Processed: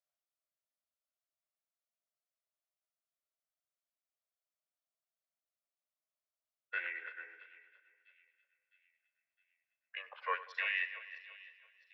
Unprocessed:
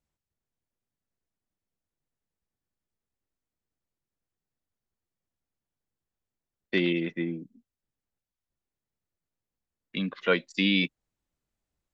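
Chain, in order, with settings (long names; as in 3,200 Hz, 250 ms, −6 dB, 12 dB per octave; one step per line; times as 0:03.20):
feedback delay that plays each chunk backwards 169 ms, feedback 59%, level −13 dB
Butterworth high-pass 620 Hz 48 dB per octave
formants moved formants −5 semitones
on a send: echo with a time of its own for lows and highs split 2,500 Hz, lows 97 ms, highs 660 ms, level −16 dB
on the sum: level −7 dB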